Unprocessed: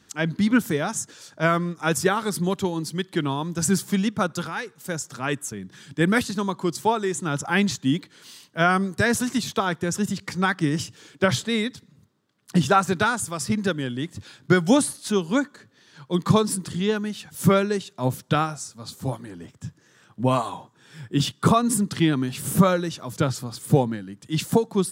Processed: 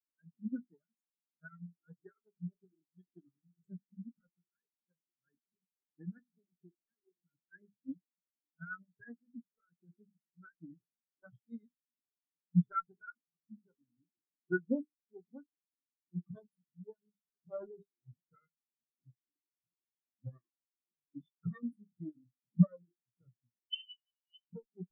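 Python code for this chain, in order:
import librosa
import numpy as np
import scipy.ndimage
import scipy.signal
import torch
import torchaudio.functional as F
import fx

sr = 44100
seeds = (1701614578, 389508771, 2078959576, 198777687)

y = fx.lower_of_two(x, sr, delay_ms=0.59)
y = fx.low_shelf(y, sr, hz=140.0, db=-8.5)
y = fx.hum_notches(y, sr, base_hz=50, count=8)
y = fx.level_steps(y, sr, step_db=16, at=(6.74, 7.38))
y = fx.transient(y, sr, attack_db=-8, sustain_db=10, at=(17.12, 18.24), fade=0.02)
y = fx.dmg_noise_band(y, sr, seeds[0], low_hz=140.0, high_hz=440.0, level_db=-39.0)
y = y * (1.0 - 0.44 / 2.0 + 0.44 / 2.0 * np.cos(2.0 * np.pi * 11.0 * (np.arange(len(y)) / sr)))
y = fx.room_early_taps(y, sr, ms=(17, 34), db=(-11.0, -15.5))
y = fx.freq_invert(y, sr, carrier_hz=3200, at=(23.7, 24.47))
y = fx.spectral_expand(y, sr, expansion=4.0)
y = y * librosa.db_to_amplitude(-5.5)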